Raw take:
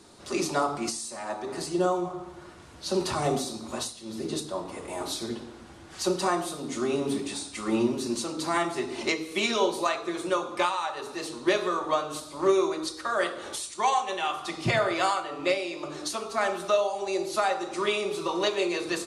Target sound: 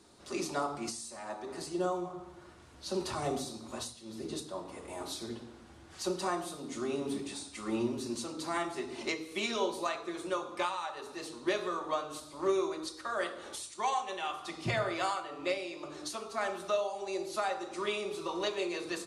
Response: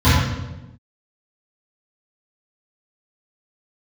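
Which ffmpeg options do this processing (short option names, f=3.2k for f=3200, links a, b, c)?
-filter_complex "[0:a]asplit=2[a][b];[1:a]atrim=start_sample=2205,atrim=end_sample=6174[c];[b][c]afir=irnorm=-1:irlink=0,volume=-45.5dB[d];[a][d]amix=inputs=2:normalize=0,volume=-7.5dB"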